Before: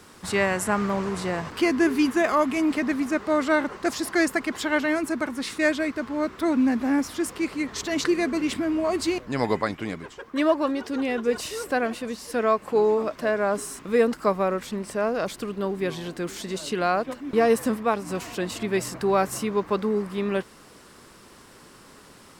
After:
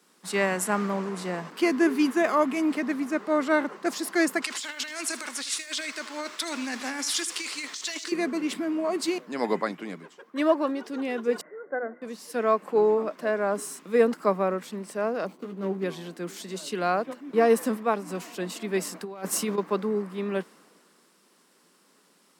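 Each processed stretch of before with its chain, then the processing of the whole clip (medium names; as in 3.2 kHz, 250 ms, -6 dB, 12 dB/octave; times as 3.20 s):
4.42–8.12 s: frequency weighting ITU-R 468 + compressor with a negative ratio -30 dBFS + bit-crushed delay 80 ms, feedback 35%, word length 8-bit, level -14 dB
11.41–12.02 s: rippled Chebyshev low-pass 2.1 kHz, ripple 9 dB + hum notches 50/100/150/200/250/300/350 Hz
15.27–15.84 s: median filter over 25 samples + doubling 16 ms -5.5 dB
19.03–19.58 s: hard clipper -12.5 dBFS + compressor with a negative ratio -26 dBFS, ratio -0.5
whole clip: elliptic high-pass 170 Hz; treble shelf 9.6 kHz +3.5 dB; three bands expanded up and down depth 40%; trim -2 dB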